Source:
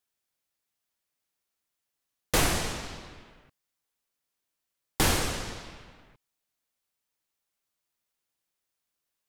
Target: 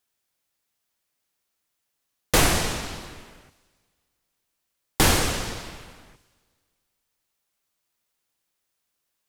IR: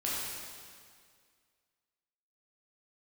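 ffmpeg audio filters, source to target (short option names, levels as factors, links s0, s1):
-filter_complex "[0:a]asplit=2[s0][s1];[1:a]atrim=start_sample=2205,highshelf=f=3600:g=9,adelay=93[s2];[s1][s2]afir=irnorm=-1:irlink=0,volume=0.0376[s3];[s0][s3]amix=inputs=2:normalize=0,volume=1.88"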